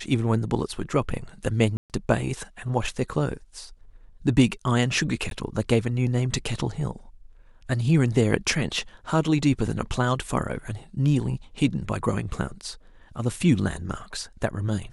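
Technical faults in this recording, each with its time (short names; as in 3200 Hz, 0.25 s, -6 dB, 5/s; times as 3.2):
1.77–1.9 gap 0.128 s
5.3–5.31 gap 12 ms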